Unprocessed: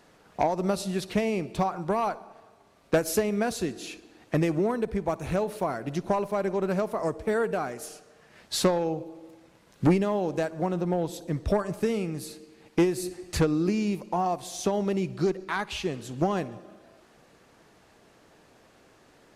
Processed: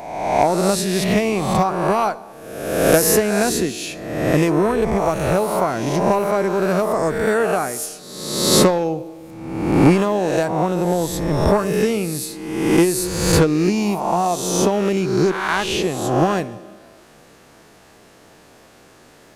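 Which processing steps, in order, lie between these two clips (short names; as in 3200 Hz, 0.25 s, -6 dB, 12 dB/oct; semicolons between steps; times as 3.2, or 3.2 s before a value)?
spectral swells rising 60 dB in 1.15 s; high shelf 7400 Hz +7 dB; gain +6.5 dB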